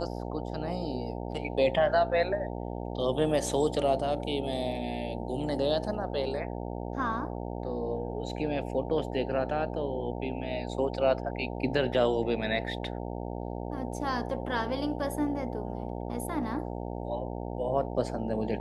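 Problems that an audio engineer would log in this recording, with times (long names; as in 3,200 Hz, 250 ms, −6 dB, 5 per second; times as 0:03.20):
mains buzz 60 Hz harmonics 15 −36 dBFS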